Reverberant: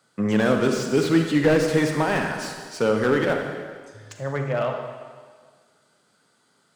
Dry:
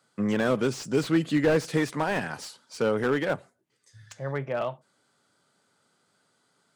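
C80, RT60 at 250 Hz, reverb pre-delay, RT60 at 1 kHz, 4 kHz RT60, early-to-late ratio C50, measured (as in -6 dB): 6.0 dB, 1.7 s, 36 ms, 1.7 s, 1.6 s, 4.0 dB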